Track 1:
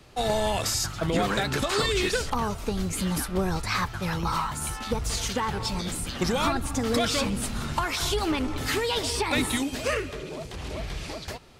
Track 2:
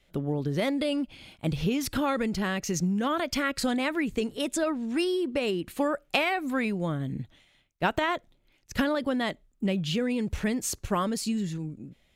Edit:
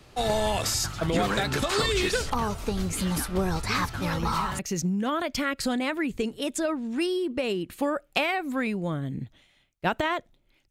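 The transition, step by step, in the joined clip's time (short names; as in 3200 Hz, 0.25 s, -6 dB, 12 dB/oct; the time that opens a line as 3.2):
track 1
3.69 add track 2 from 1.67 s 0.90 s -9.5 dB
4.59 switch to track 2 from 2.57 s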